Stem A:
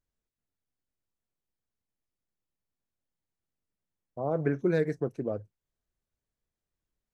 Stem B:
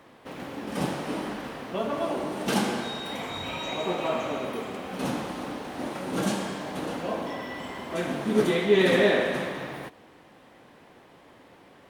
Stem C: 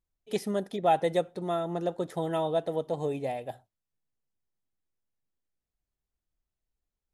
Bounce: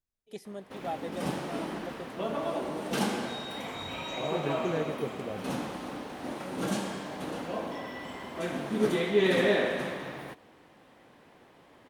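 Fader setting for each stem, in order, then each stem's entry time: −6.0, −4.0, −12.0 decibels; 0.00, 0.45, 0.00 seconds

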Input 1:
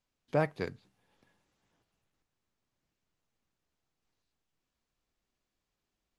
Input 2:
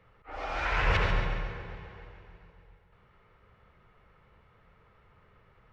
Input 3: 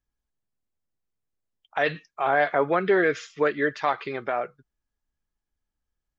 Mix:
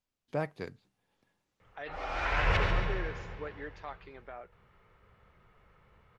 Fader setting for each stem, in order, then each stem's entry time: −4.5, −1.5, −19.0 decibels; 0.00, 1.60, 0.00 seconds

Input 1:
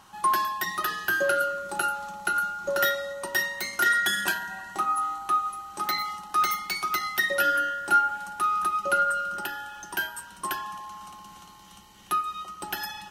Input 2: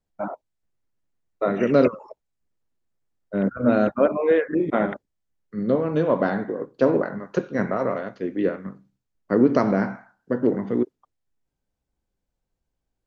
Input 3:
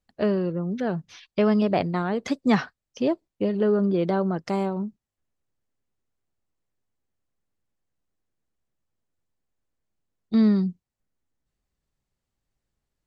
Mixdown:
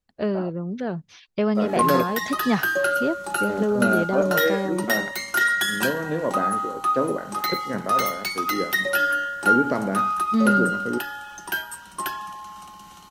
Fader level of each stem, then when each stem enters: +2.0, −5.0, −1.5 decibels; 1.55, 0.15, 0.00 seconds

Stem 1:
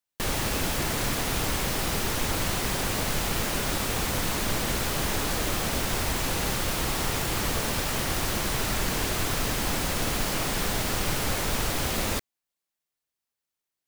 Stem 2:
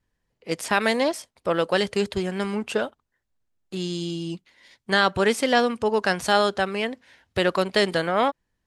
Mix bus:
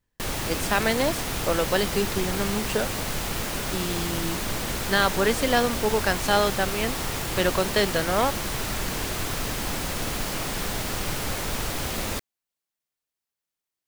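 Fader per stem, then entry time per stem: −1.5, −2.0 decibels; 0.00, 0.00 seconds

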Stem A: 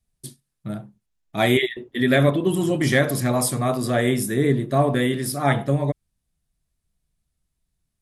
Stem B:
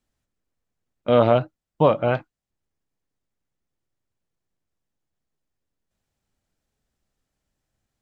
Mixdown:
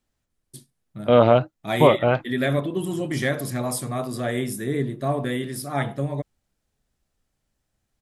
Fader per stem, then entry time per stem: −5.5, +1.5 decibels; 0.30, 0.00 seconds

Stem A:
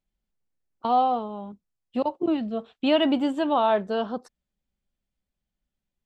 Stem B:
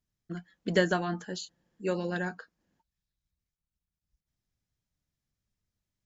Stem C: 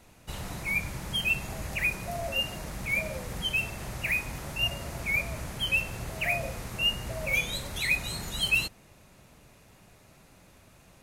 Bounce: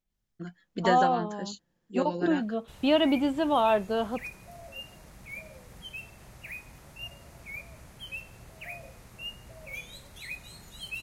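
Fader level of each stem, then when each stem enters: −2.0, −1.5, −13.0 decibels; 0.00, 0.10, 2.40 seconds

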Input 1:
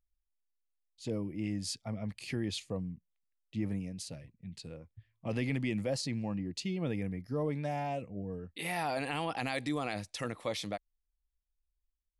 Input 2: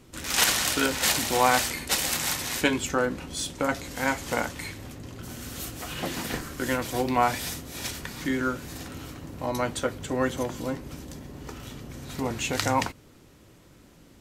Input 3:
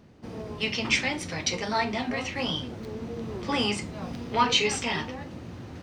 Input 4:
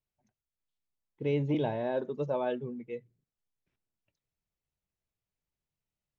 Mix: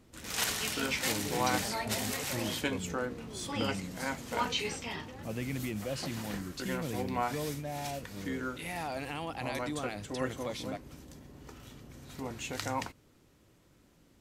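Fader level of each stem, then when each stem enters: −3.5, −10.0, −10.5, −13.0 decibels; 0.00, 0.00, 0.00, 0.00 seconds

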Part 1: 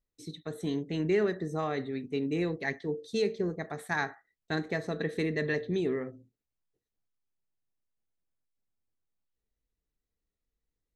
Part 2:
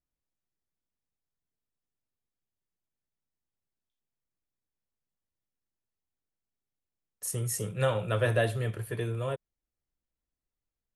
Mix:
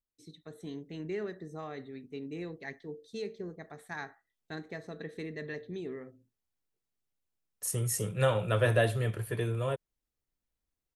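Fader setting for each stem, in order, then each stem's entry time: −9.5, +0.5 decibels; 0.00, 0.40 seconds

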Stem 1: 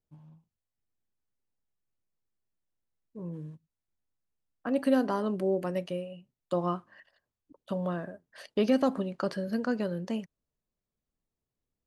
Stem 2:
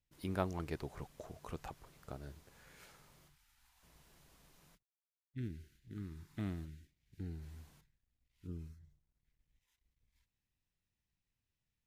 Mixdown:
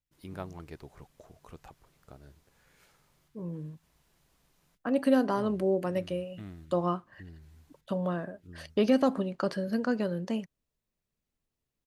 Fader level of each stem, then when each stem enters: +1.0, −4.0 decibels; 0.20, 0.00 seconds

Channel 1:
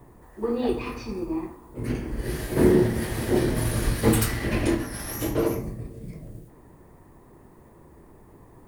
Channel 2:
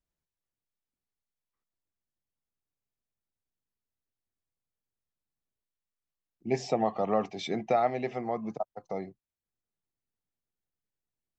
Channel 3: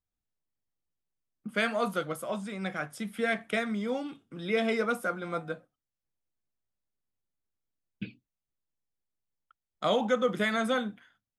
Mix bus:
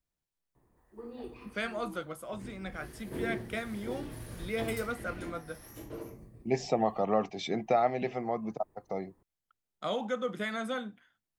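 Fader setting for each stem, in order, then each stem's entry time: −18.5, −0.5, −6.5 decibels; 0.55, 0.00, 0.00 seconds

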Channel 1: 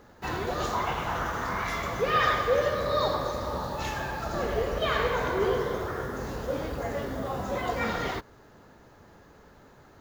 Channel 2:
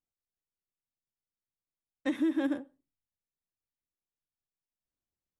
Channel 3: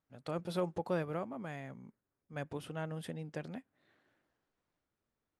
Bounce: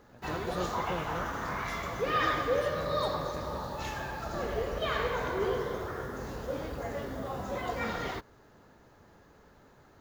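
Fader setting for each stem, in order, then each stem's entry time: −4.5, −14.0, −3.0 decibels; 0.00, 0.00, 0.00 seconds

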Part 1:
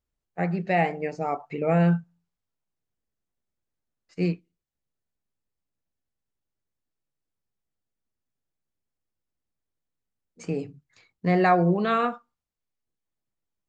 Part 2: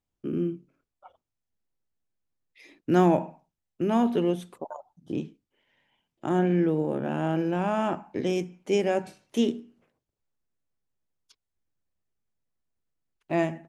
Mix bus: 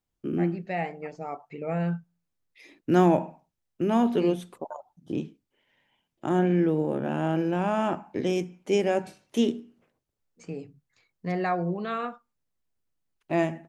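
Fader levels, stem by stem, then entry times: −7.5, +0.5 decibels; 0.00, 0.00 seconds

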